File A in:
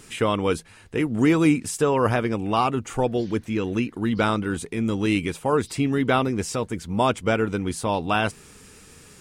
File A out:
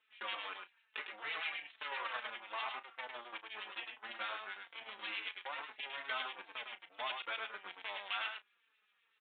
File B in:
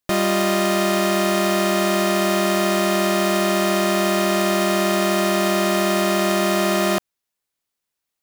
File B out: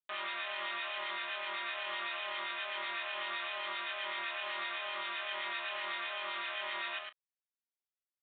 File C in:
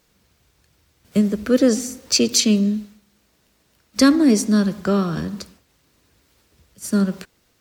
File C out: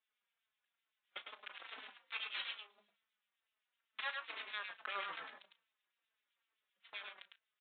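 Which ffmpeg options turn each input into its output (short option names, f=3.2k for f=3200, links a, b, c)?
-filter_complex "[0:a]afftfilt=real='re*lt(hypot(re,im),0.891)':imag='im*lt(hypot(re,im),0.891)':win_size=1024:overlap=0.75,aeval=exprs='0.631*(cos(1*acos(clip(val(0)/0.631,-1,1)))-cos(1*PI/2))+0.0355*(cos(3*acos(clip(val(0)/0.631,-1,1)))-cos(3*PI/2))+0.00708*(cos(4*acos(clip(val(0)/0.631,-1,1)))-cos(4*PI/2))+0.0112*(cos(6*acos(clip(val(0)/0.631,-1,1)))-cos(6*PI/2))+0.0794*(cos(7*acos(clip(val(0)/0.631,-1,1)))-cos(7*PI/2))':c=same,acompressor=threshold=-33dB:ratio=2,crystalizer=i=0.5:c=0,acrossover=split=2000[a][b];[a]aeval=exprs='val(0)*(1-0.7/2+0.7/2*cos(2*PI*7.8*n/s))':c=same[c];[b]aeval=exprs='val(0)*(1-0.7/2-0.7/2*cos(2*PI*7.8*n/s))':c=same[d];[c][d]amix=inputs=2:normalize=0,aeval=exprs='(tanh(44.7*val(0)+0.1)-tanh(0.1))/44.7':c=same,highpass=1.3k,asplit=2[e][f];[f]adelay=34,volume=-13.5dB[g];[e][g]amix=inputs=2:normalize=0,asplit=2[h][i];[i]aecho=0:1:104:0.562[j];[h][j]amix=inputs=2:normalize=0,aresample=8000,aresample=44100,asplit=2[k][l];[l]adelay=4,afreqshift=-2.3[m];[k][m]amix=inputs=2:normalize=1,volume=11.5dB"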